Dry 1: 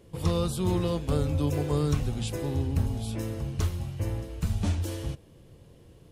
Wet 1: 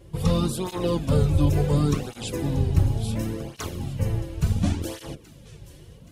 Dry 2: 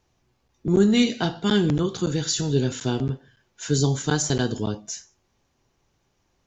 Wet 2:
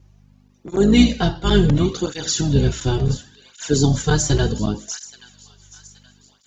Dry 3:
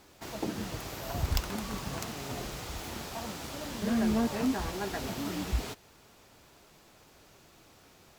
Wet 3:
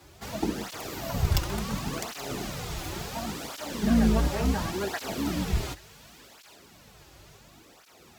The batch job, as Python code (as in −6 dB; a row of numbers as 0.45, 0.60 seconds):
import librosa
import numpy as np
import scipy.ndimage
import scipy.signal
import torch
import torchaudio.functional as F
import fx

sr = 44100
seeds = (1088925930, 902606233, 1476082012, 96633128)

p1 = fx.octave_divider(x, sr, octaves=2, level_db=1.0)
p2 = p1 + fx.echo_wet_highpass(p1, sr, ms=824, feedback_pct=45, hz=1700.0, wet_db=-15.5, dry=0)
p3 = fx.add_hum(p2, sr, base_hz=50, snr_db=32)
p4 = fx.flanger_cancel(p3, sr, hz=0.7, depth_ms=4.7)
y = p4 * librosa.db_to_amplitude(6.5)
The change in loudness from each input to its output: +4.5, +4.5, +4.5 LU